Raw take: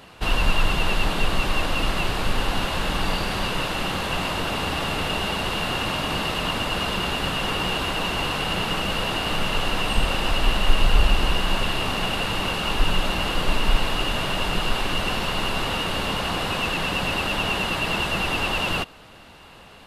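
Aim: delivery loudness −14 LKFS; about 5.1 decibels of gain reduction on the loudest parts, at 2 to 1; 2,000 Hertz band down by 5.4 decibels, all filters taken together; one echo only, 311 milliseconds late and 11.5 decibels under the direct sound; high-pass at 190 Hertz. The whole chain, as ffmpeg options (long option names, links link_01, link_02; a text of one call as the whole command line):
ffmpeg -i in.wav -af "highpass=190,equalizer=frequency=2000:width_type=o:gain=-8.5,acompressor=threshold=-34dB:ratio=2,aecho=1:1:311:0.266,volume=18dB" out.wav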